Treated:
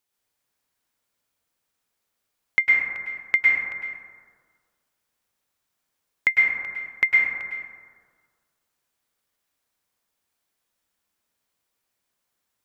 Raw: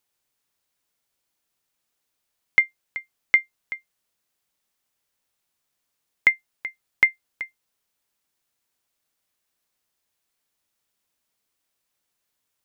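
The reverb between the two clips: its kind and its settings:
dense smooth reverb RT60 1.7 s, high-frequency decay 0.3×, pre-delay 95 ms, DRR −3.5 dB
level −3.5 dB

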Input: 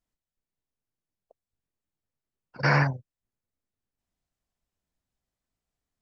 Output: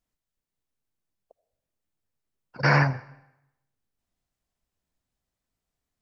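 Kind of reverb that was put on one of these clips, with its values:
comb and all-pass reverb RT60 0.86 s, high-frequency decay 0.9×, pre-delay 40 ms, DRR 18 dB
level +2 dB

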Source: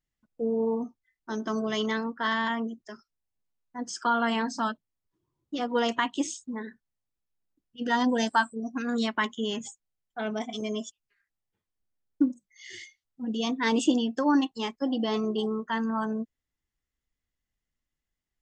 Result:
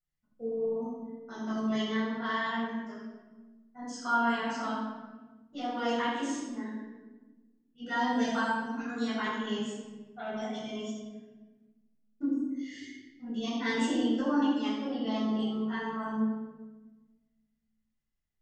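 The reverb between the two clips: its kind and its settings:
rectangular room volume 870 cubic metres, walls mixed, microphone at 6.9 metres
level −17 dB

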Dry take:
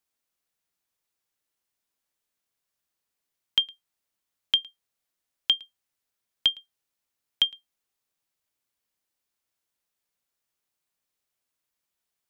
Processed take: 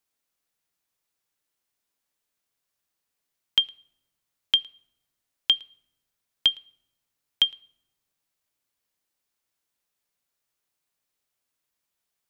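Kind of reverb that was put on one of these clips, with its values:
rectangular room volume 3,600 cubic metres, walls furnished, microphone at 0.32 metres
level +1.5 dB

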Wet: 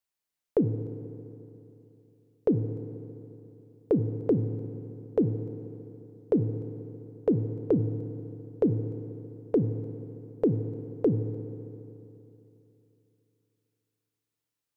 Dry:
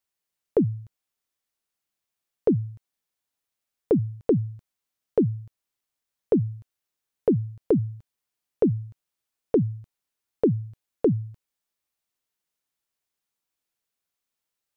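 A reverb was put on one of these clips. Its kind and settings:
feedback delay network reverb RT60 3.1 s, high-frequency decay 0.8×, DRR 9.5 dB
level −3.5 dB

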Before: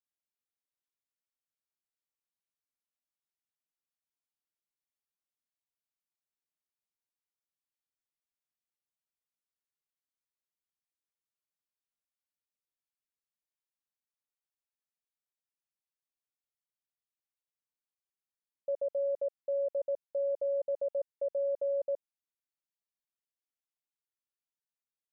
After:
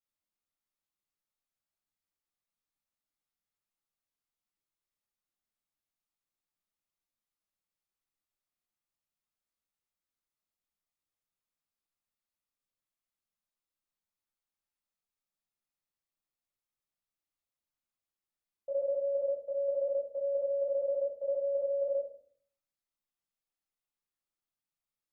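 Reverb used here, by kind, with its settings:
rectangular room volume 560 cubic metres, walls furnished, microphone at 6.8 metres
level −8.5 dB

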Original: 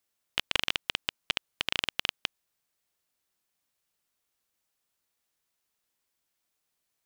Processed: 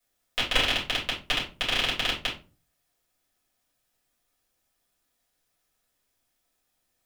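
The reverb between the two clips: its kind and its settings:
rectangular room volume 150 cubic metres, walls furnished, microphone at 5.4 metres
level −4.5 dB

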